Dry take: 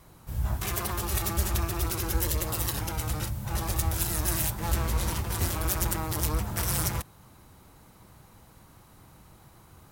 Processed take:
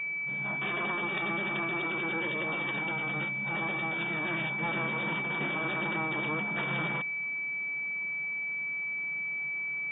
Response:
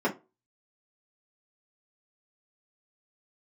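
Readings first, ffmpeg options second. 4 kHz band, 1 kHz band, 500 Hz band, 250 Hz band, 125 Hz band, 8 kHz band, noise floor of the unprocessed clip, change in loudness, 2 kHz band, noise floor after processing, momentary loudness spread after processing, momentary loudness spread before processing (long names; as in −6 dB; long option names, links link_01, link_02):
−4.5 dB, 0.0 dB, 0.0 dB, 0.0 dB, −11.5 dB, below −40 dB, −55 dBFS, −1.5 dB, +12.5 dB, −34 dBFS, 2 LU, 5 LU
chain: -af "aeval=exprs='val(0)+0.0282*sin(2*PI*2300*n/s)':channel_layout=same,afftfilt=real='re*between(b*sr/4096,130,3700)':imag='im*between(b*sr/4096,130,3700)':win_size=4096:overlap=0.75,bandreject=frequency=2100:width=17"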